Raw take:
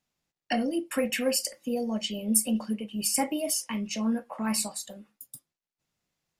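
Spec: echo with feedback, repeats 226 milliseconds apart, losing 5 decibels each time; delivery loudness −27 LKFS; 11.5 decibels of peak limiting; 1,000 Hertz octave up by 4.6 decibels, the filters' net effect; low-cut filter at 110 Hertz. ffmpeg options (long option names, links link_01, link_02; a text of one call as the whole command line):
ffmpeg -i in.wav -af "highpass=110,equalizer=frequency=1000:width_type=o:gain=6.5,alimiter=limit=-19.5dB:level=0:latency=1,aecho=1:1:226|452|678|904|1130|1356|1582:0.562|0.315|0.176|0.0988|0.0553|0.031|0.0173,volume=1.5dB" out.wav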